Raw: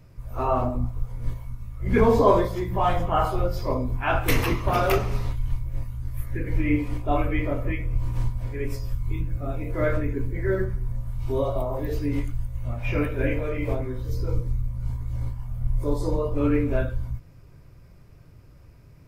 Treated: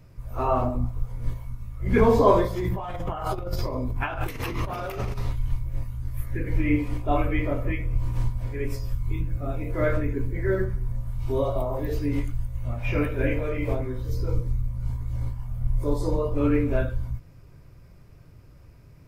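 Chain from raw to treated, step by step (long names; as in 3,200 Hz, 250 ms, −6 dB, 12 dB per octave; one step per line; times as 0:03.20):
0:02.60–0:05.19: compressor whose output falls as the input rises −29 dBFS, ratio −1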